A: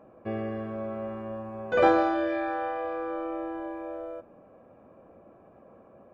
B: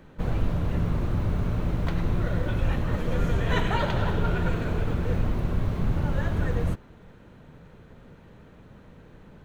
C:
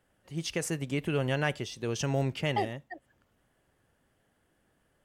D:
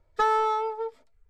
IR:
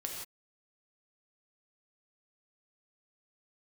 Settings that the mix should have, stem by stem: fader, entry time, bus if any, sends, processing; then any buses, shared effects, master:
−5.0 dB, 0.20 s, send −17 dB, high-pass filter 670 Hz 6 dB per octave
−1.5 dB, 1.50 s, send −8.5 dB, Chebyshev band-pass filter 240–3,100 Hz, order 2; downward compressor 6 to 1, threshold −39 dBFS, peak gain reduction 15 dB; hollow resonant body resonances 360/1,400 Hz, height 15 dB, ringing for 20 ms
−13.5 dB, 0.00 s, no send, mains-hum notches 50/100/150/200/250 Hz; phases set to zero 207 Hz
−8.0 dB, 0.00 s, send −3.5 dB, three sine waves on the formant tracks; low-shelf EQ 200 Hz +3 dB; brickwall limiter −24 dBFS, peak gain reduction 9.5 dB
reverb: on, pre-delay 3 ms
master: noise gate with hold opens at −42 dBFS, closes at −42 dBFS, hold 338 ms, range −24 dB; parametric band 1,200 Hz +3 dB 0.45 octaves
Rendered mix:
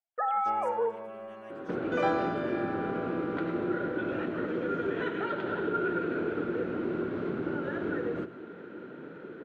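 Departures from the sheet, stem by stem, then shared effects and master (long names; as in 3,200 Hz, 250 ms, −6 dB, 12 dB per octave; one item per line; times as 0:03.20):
stem C −13.5 dB → −24.5 dB
stem D −8.0 dB → −2.0 dB
master: missing parametric band 1,200 Hz +3 dB 0.45 octaves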